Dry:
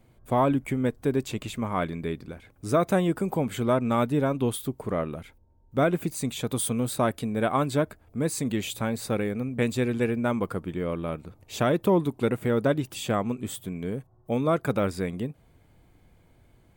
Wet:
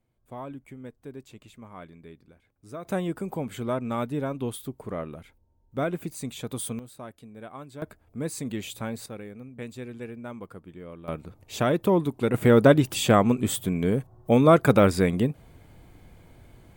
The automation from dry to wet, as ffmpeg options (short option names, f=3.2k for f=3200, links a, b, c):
-af "asetnsamples=n=441:p=0,asendcmd='2.85 volume volume -5dB;6.79 volume volume -17dB;7.82 volume volume -4.5dB;9.06 volume volume -12.5dB;11.08 volume volume 0dB;12.34 volume volume 7.5dB',volume=-16dB"